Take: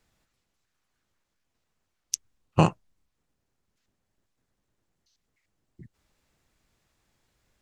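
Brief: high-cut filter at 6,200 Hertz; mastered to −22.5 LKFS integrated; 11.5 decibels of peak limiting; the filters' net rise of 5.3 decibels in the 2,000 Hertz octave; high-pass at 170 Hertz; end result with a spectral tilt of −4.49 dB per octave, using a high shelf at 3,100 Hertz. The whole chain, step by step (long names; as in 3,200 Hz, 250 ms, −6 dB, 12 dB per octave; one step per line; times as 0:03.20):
high-pass filter 170 Hz
low-pass filter 6,200 Hz
parametric band 2,000 Hz +4.5 dB
high-shelf EQ 3,100 Hz +6.5 dB
level +13 dB
brickwall limiter −2.5 dBFS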